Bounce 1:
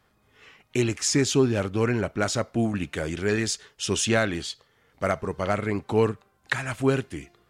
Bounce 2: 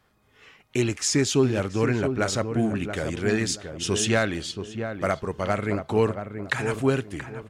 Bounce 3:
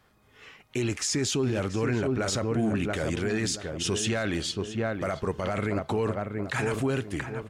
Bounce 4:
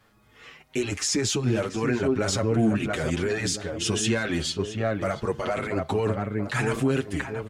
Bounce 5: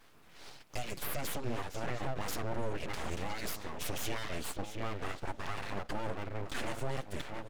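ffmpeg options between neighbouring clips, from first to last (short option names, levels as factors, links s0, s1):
-filter_complex "[0:a]asplit=2[s0][s1];[s1]adelay=679,lowpass=f=1100:p=1,volume=0.447,asplit=2[s2][s3];[s3]adelay=679,lowpass=f=1100:p=1,volume=0.31,asplit=2[s4][s5];[s5]adelay=679,lowpass=f=1100:p=1,volume=0.31,asplit=2[s6][s7];[s7]adelay=679,lowpass=f=1100:p=1,volume=0.31[s8];[s0][s2][s4][s6][s8]amix=inputs=5:normalize=0"
-af "alimiter=limit=0.0841:level=0:latency=1:release=20,volume=1.26"
-filter_complex "[0:a]asplit=2[s0][s1];[s1]adelay=6.8,afreqshift=0.8[s2];[s0][s2]amix=inputs=2:normalize=1,volume=1.88"
-af "acompressor=threshold=0.002:ratio=1.5,aeval=exprs='abs(val(0))':c=same,volume=1.26"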